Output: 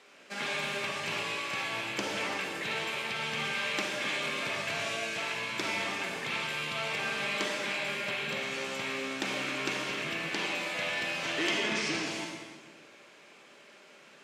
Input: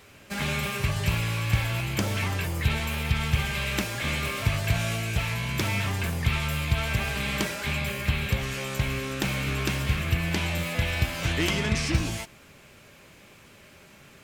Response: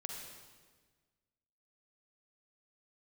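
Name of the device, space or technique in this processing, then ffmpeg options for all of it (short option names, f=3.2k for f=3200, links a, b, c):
supermarket ceiling speaker: -filter_complex "[0:a]highpass=200,lowpass=6.9k,highpass=260[a];[1:a]atrim=start_sample=2205[b];[a][b]afir=irnorm=-1:irlink=0"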